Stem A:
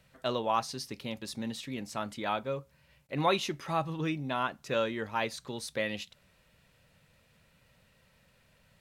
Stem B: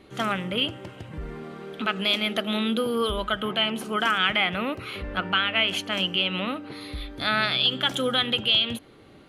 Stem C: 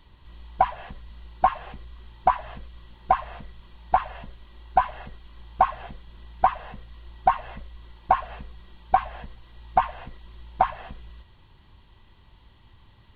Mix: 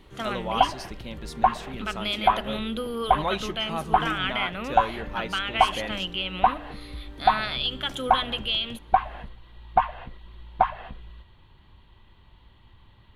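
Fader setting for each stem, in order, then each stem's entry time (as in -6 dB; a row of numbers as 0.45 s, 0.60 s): -1.0 dB, -5.5 dB, 0.0 dB; 0.00 s, 0.00 s, 0.00 s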